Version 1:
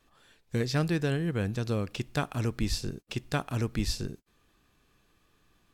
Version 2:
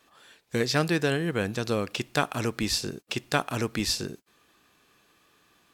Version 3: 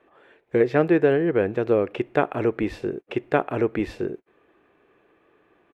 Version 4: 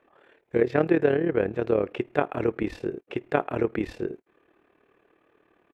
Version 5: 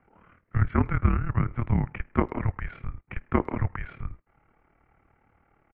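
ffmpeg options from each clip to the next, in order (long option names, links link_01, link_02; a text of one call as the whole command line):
ffmpeg -i in.wav -af "highpass=frequency=380:poles=1,volume=7.5dB" out.wav
ffmpeg -i in.wav -af "firequalizer=gain_entry='entry(220,0);entry(360,11);entry(1100,0);entry(2100,1);entry(4700,-24)':delay=0.05:min_phase=1" out.wav
ffmpeg -i in.wav -af "tremolo=f=37:d=0.71" out.wav
ffmpeg -i in.wav -filter_complex "[0:a]highpass=frequency=380:width_type=q:width=0.5412,highpass=frequency=380:width_type=q:width=1.307,lowpass=frequency=2900:width_type=q:width=0.5176,lowpass=frequency=2900:width_type=q:width=0.7071,lowpass=frequency=2900:width_type=q:width=1.932,afreqshift=-360,asplit=2[link_01][link_02];[link_02]adelay=100,highpass=300,lowpass=3400,asoftclip=type=hard:threshold=-18.5dB,volume=-28dB[link_03];[link_01][link_03]amix=inputs=2:normalize=0,volume=1.5dB" out.wav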